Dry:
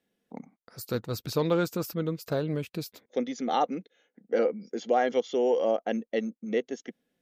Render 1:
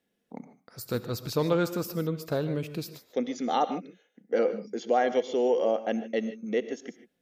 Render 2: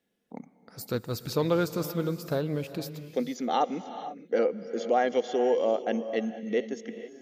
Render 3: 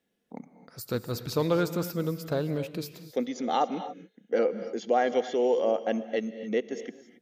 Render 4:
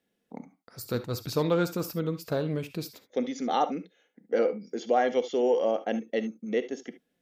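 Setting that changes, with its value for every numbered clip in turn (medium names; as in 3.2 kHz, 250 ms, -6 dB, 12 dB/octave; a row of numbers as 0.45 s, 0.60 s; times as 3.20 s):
gated-style reverb, gate: 170 ms, 510 ms, 300 ms, 90 ms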